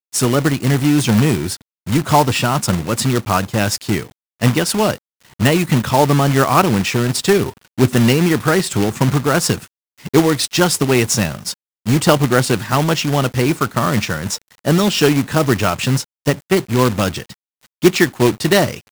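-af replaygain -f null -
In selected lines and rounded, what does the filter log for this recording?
track_gain = -2.9 dB
track_peak = 0.572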